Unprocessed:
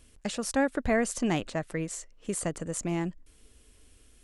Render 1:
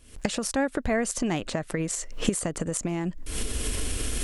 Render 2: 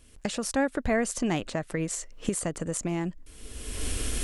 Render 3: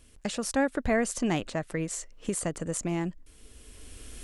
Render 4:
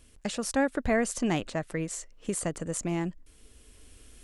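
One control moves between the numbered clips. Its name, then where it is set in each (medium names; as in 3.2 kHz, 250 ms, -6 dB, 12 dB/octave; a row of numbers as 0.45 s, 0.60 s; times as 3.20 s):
recorder AGC, rising by: 88 dB/s, 33 dB/s, 13 dB/s, 5.5 dB/s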